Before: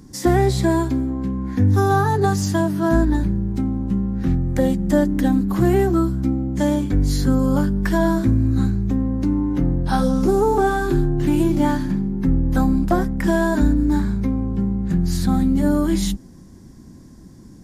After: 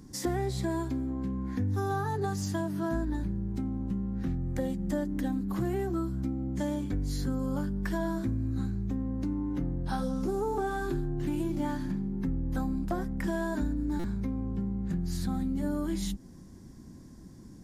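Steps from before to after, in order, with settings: compressor 2.5:1, threshold -25 dBFS, peak gain reduction 9 dB; stuck buffer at 13.99, samples 256, times 8; gain -6 dB

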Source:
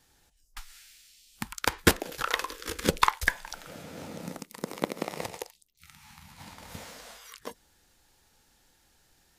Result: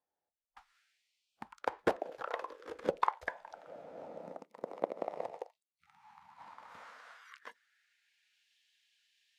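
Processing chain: band-pass sweep 640 Hz -> 2900 Hz, 5.55–8.54; spectral noise reduction 15 dB; gain +1 dB

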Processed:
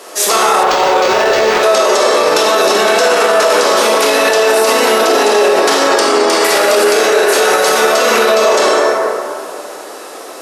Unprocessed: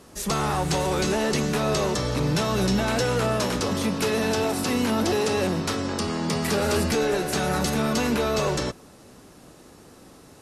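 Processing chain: HPF 410 Hz 24 dB/oct; reverb RT60 2.3 s, pre-delay 17 ms, DRR -4 dB; maximiser +18.5 dB; 0.63–1.63 decimation joined by straight lines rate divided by 4×; gain -1 dB

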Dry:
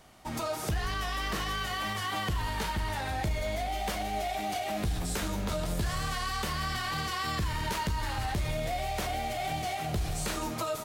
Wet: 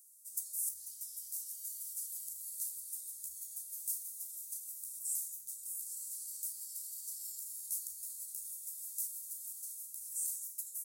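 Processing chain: inverse Chebyshev high-pass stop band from 2800 Hz, stop band 60 dB; vocal rider 2 s; gain +7.5 dB

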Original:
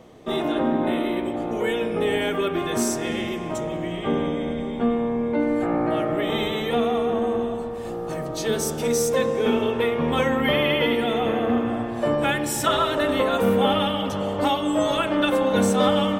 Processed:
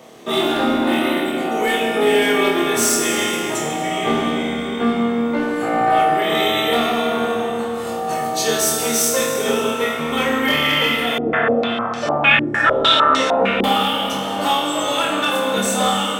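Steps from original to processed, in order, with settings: HPF 110 Hz; tilt +2 dB/oct; vocal rider within 4 dB 2 s; hard clip -16 dBFS, distortion -22 dB; flutter echo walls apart 4.5 m, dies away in 0.4 s; plate-style reverb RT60 3.1 s, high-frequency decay 0.75×, DRR 2 dB; 11.18–13.64 stepped low-pass 6.6 Hz 360–5700 Hz; gain +2 dB

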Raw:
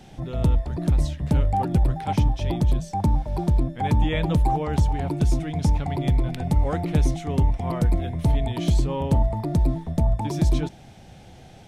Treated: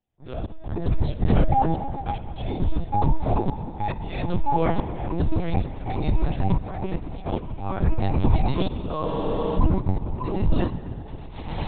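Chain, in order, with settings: gliding pitch shift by +3 st starting unshifted; recorder AGC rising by 34 dB/s; gate -27 dBFS, range -45 dB; in parallel at -2.5 dB: limiter -19.5 dBFS, peak gain reduction 9.5 dB; on the sum: auto swell 0.647 s; on a send at -11 dB: reverb RT60 4.2 s, pre-delay 31 ms; on the sum: LPC vocoder at 8 kHz pitch kept; spectral freeze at 9.07, 0.50 s

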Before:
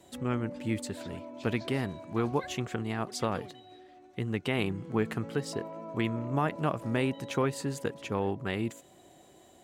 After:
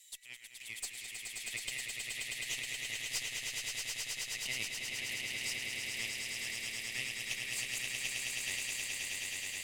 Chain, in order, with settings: Chebyshev high-pass 1900 Hz, order 6; high shelf 4000 Hz +9.5 dB; in parallel at -2 dB: compressor, threshold -53 dBFS, peak gain reduction 23 dB; on the sum: tube stage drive 24 dB, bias 0.55; swelling echo 0.106 s, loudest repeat 8, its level -4.5 dB; gain -3.5 dB

